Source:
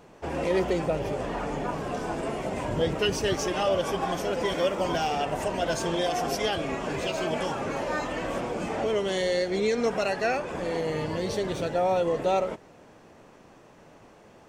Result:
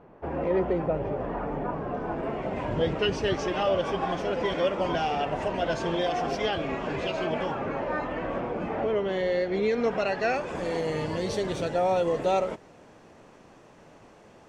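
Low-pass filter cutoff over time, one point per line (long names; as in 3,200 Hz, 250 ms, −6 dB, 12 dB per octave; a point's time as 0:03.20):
0:01.98 1,500 Hz
0:02.82 3,700 Hz
0:07.12 3,700 Hz
0:07.76 2,100 Hz
0:09.10 2,100 Hz
0:10.15 4,100 Hz
0:10.58 11,000 Hz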